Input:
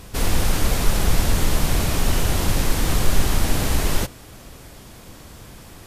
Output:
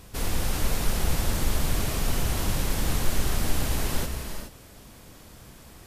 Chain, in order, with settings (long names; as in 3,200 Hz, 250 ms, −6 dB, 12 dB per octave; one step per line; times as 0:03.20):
high-shelf EQ 11,000 Hz +3.5 dB
reverb whose tail is shaped and stops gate 450 ms rising, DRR 5.5 dB
level −7.5 dB